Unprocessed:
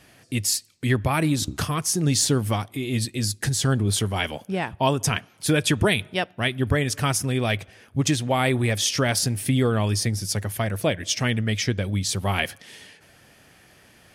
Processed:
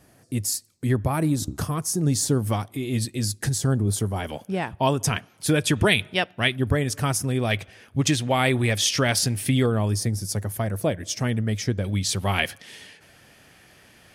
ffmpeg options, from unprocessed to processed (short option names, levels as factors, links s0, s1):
-af "asetnsamples=n=441:p=0,asendcmd='2.47 equalizer g -4.5;3.58 equalizer g -13;4.29 equalizer g -2.5;5.76 equalizer g 3.5;6.56 equalizer g -5.5;7.51 equalizer g 2;9.66 equalizer g -9.5;11.84 equalizer g 1.5',equalizer=f=2800:t=o:w=1.8:g=-11.5"